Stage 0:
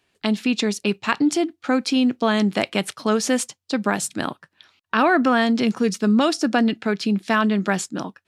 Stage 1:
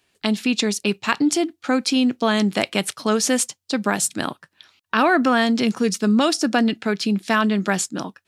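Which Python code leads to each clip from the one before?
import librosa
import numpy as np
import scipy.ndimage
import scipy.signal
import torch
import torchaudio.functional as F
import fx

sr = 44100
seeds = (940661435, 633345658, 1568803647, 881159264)

y = fx.high_shelf(x, sr, hz=4500.0, db=7.0)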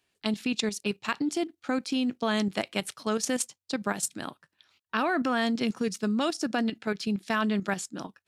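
y = fx.level_steps(x, sr, step_db=10)
y = y * librosa.db_to_amplitude(-6.0)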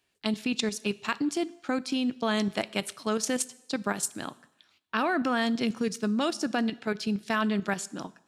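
y = fx.rev_plate(x, sr, seeds[0], rt60_s=0.88, hf_ratio=1.0, predelay_ms=0, drr_db=18.5)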